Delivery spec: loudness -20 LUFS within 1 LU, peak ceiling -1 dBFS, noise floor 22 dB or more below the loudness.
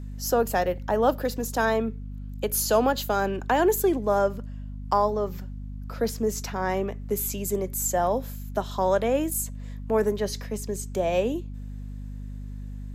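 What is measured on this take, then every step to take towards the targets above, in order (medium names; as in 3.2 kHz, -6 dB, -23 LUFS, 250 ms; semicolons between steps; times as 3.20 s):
hum 50 Hz; highest harmonic 250 Hz; hum level -33 dBFS; loudness -26.0 LUFS; peak level -10.0 dBFS; loudness target -20.0 LUFS
-> hum notches 50/100/150/200/250 Hz; trim +6 dB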